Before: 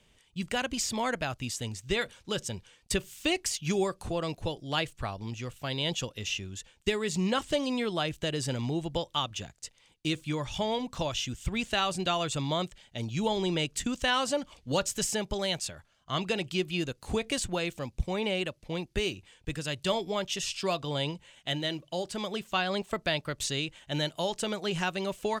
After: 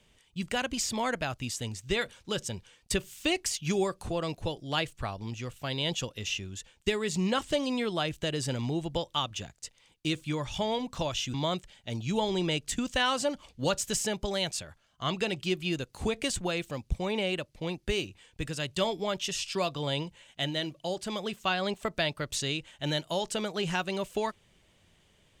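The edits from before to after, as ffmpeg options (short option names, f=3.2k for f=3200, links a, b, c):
-filter_complex "[0:a]asplit=2[a][b];[a]atrim=end=11.342[c];[b]atrim=start=12.418[d];[c][d]acrossfade=d=0.004:c1=hsin:c2=hsin"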